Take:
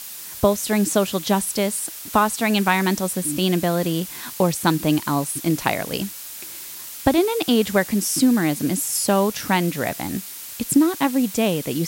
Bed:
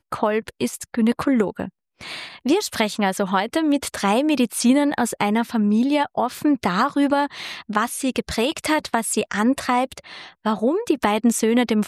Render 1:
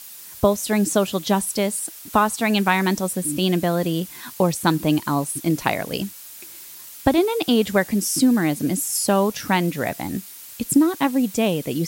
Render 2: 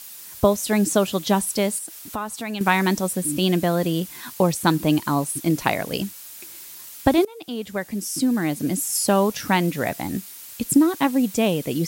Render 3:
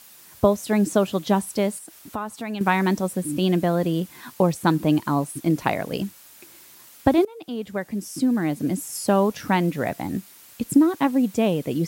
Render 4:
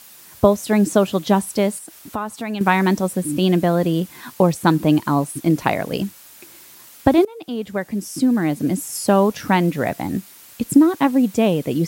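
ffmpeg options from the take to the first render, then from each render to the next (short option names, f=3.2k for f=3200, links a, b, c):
-af "afftdn=nr=6:nf=-36"
-filter_complex "[0:a]asettb=1/sr,asplit=3[a][b][c];[a]atrim=end=1.784[d];[b]atrim=start=1.78:end=2.61,asetpts=PTS-STARTPTS,afade=t=in:d=0.004:c=qsin,afade=t=out:st=0.826:d=0.004:c=qsin,acompressor=threshold=-33dB:ratio=2:attack=3.2:release=140:knee=1:detection=peak[e];[c]atrim=start=2.606[f];[d][e]acrossfade=d=0.004:c1=hsin:c2=qsin[g];[g][f]acrossfade=d=0.004:c1=qsin:c2=hsin,asplit=2[h][i];[h]atrim=end=7.25,asetpts=PTS-STARTPTS,afade=t=out:st=7.246:d=0.004:c=hsin:silence=0.0891251[j];[i]atrim=start=7.25,asetpts=PTS-STARTPTS,afade=t=in:d=1.74:silence=0.0891251[k];[j][k]concat=n=2:v=0:a=1"
-af "highpass=59,highshelf=f=2.5k:g=-9"
-af "volume=4dB,alimiter=limit=-1dB:level=0:latency=1"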